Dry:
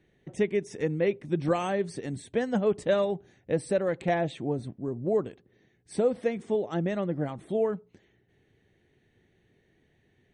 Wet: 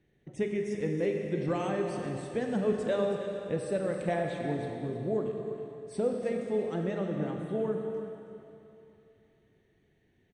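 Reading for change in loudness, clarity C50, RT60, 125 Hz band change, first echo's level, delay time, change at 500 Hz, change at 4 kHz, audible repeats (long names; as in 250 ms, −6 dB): −3.0 dB, 2.5 dB, 2.9 s, −2.0 dB, −11.5 dB, 322 ms, −3.0 dB, −4.0 dB, 1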